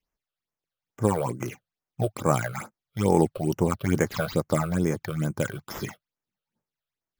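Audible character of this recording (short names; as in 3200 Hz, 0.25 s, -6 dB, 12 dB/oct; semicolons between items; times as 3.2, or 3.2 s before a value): aliases and images of a low sample rate 8600 Hz, jitter 0%; phasing stages 8, 2.3 Hz, lowest notch 250–4100 Hz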